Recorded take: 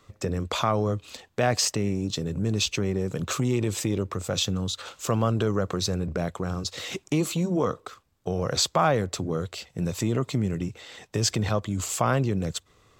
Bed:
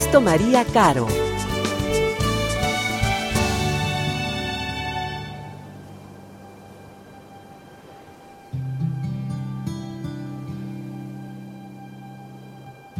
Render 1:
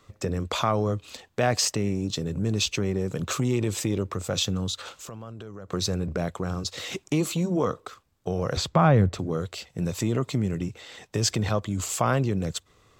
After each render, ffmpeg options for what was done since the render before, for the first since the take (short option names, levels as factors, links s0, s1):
-filter_complex "[0:a]asplit=3[s0][s1][s2];[s0]afade=t=out:st=4.96:d=0.02[s3];[s1]acompressor=threshold=0.0112:ratio=4:attack=3.2:release=140:knee=1:detection=peak,afade=t=in:st=4.96:d=0.02,afade=t=out:st=5.71:d=0.02[s4];[s2]afade=t=in:st=5.71:d=0.02[s5];[s3][s4][s5]amix=inputs=3:normalize=0,asettb=1/sr,asplit=3[s6][s7][s8];[s6]atrim=end=8.574[s9];[s7]atrim=start=8.57:end=9.19,asetpts=PTS-STARTPTS,afade=t=in:d=0.004:c=qsin,afade=t=out:st=0.616:d=0.004:c=qsin,bass=f=250:g=11,treble=f=4000:g=-10[s10];[s8]atrim=start=9.186[s11];[s9][s10]acrossfade=d=0.004:c1=hsin:c2=qsin[s12];[s12][s11]acrossfade=d=0.004:c1=qsin:c2=hsin"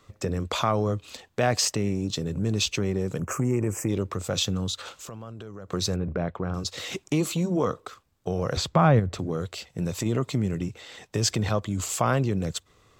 -filter_complex "[0:a]asettb=1/sr,asplit=3[s0][s1][s2];[s0]atrim=end=3.184[s3];[s1]atrim=start=3.18:end=3.89,asetpts=PTS-STARTPTS,afade=t=in:d=0.004:c=qsin,afade=t=out:st=0.706:d=0.004:c=qsin,asuperstop=centerf=3800:order=4:qfactor=0.85[s4];[s2]atrim=start=3.886[s5];[s3][s4]acrossfade=d=0.004:c1=hsin:c2=qsin[s6];[s6][s5]acrossfade=d=0.004:c1=qsin:c2=hsin,asettb=1/sr,asplit=3[s7][s8][s9];[s7]atrim=end=5.964[s10];[s8]atrim=start=5.96:end=6.54,asetpts=PTS-STARTPTS,afade=t=in:d=0.004:c=qsin,afade=t=out:st=0.576:d=0.004:c=qsin,lowpass=2300[s11];[s9]atrim=start=6.536[s12];[s10][s11]acrossfade=d=0.004:c1=hsin:c2=qsin[s13];[s13][s12]acrossfade=d=0.004:c1=qsin:c2=hsin,asettb=1/sr,asplit=3[s14][s15][s16];[s14]atrim=end=8.994[s17];[s15]atrim=start=8.99:end=10.06,asetpts=PTS-STARTPTS,afade=t=in:d=0.004:c=qsin,afade=t=out:st=1.066:d=0.004:c=qsin,acompressor=threshold=0.0794:ratio=6:attack=3.2:release=140:knee=1:detection=peak[s18];[s16]atrim=start=10.056[s19];[s17][s18]acrossfade=d=0.004:c1=hsin:c2=qsin[s20];[s20][s19]acrossfade=d=0.004:c1=qsin:c2=hsin"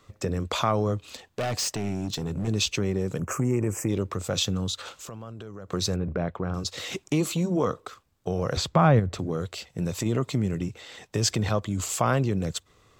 -filter_complex "[0:a]asettb=1/sr,asplit=3[s0][s1][s2];[s0]atrim=end=0.964[s3];[s1]atrim=start=0.96:end=2.48,asetpts=PTS-STARTPTS,afade=t=in:d=0.004:c=qsin,afade=t=out:st=1.516:d=0.004:c=qsin,volume=17.8,asoftclip=hard,volume=0.0562[s4];[s2]atrim=start=2.476[s5];[s3][s4]acrossfade=d=0.004:c1=hsin:c2=qsin[s6];[s6][s5]acrossfade=d=0.004:c1=qsin:c2=hsin"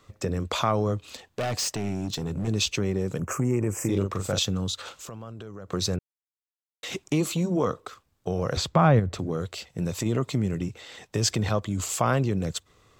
-filter_complex "[0:a]asettb=1/sr,asplit=3[s0][s1][s2];[s0]atrim=end=3.764[s3];[s1]atrim=start=3.76:end=4.39,asetpts=PTS-STARTPTS,afade=t=in:d=0.004:c=qsin,afade=t=out:st=0.626:d=0.004:c=qsin,asplit=2[s4][s5];[s5]adelay=41,volume=0.562[s6];[s4][s6]amix=inputs=2:normalize=0,atrim=end_sample=27783[s7];[s2]atrim=start=4.386[s8];[s3][s7]acrossfade=d=0.004:c1=hsin:c2=qsin[s9];[s9][s8]acrossfade=d=0.004:c1=qsin:c2=hsin,asplit=3[s10][s11][s12];[s10]atrim=end=5.99,asetpts=PTS-STARTPTS,afade=t=out:st=5.986:d=0.004:c=hsin[s13];[s11]atrim=start=5.99:end=6.83,asetpts=PTS-STARTPTS,volume=0[s14];[s12]atrim=start=6.83,asetpts=PTS-STARTPTS,afade=t=in:d=0.004:c=hsin[s15];[s13][s14][s15]concat=n=3:v=0:a=1"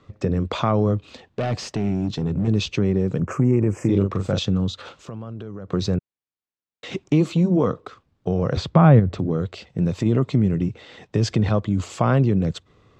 -af "lowpass=4200,equalizer=f=180:w=0.41:g=8"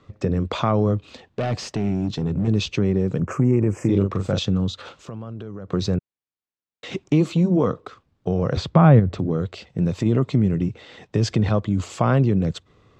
-af anull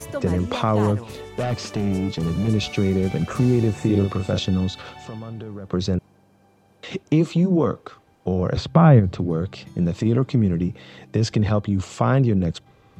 -filter_complex "[1:a]volume=0.178[s0];[0:a][s0]amix=inputs=2:normalize=0"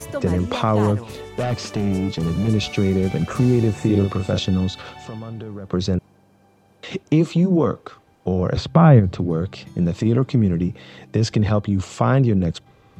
-af "volume=1.19,alimiter=limit=0.891:level=0:latency=1"